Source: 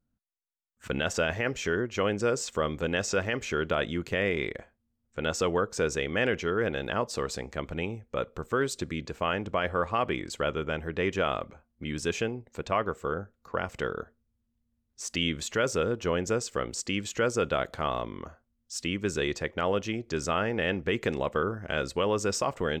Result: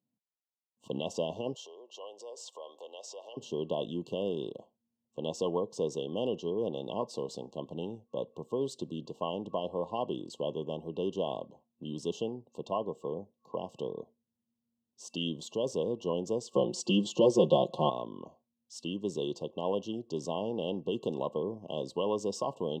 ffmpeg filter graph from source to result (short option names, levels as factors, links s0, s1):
-filter_complex "[0:a]asettb=1/sr,asplit=3[s0][s1][s2];[s0]atrim=end=1.544[s3];[s1]atrim=start=1.54:end=3.37,asetpts=PTS-STARTPTS,afade=t=in:d=0.004:c=qsin,afade=t=out:st=1.826:d=0.004:c=qsin,acompressor=threshold=0.0282:ratio=5:attack=3.2:release=140:knee=1:detection=peak,highpass=f=540:w=0.5412,highpass=f=540:w=1.3066[s4];[s2]atrim=start=3.366[s5];[s3][s4]acrossfade=d=0.004:c1=hsin:c2=qsin[s6];[s6][s5]acrossfade=d=0.004:c1=qsin:c2=hsin,asettb=1/sr,asplit=3[s7][s8][s9];[s7]atrim=end=16.534[s10];[s8]atrim=start=16.53:end=17.9,asetpts=PTS-STARTPTS,afade=t=in:d=0.004:c=qsin,afade=t=out:st=1.366:d=0.004:c=qsin,highshelf=f=9200:g=-10,aecho=1:1:5.6:0.91,atrim=end_sample=60417,acontrast=60[s11];[s9]atrim=start=17.896[s12];[s10][s11]acrossfade=d=0.004:c1=hsin:c2=qsin[s13];[s13][s12]acrossfade=d=0.004:c1=qsin:c2=hsin,aemphasis=mode=reproduction:type=50kf,afftfilt=real='re*(1-between(b*sr/4096,1100,2700))':imag='im*(1-between(b*sr/4096,1100,2700))':win_size=4096:overlap=0.75,highpass=f=140:w=0.5412,highpass=f=140:w=1.3066,volume=0.668"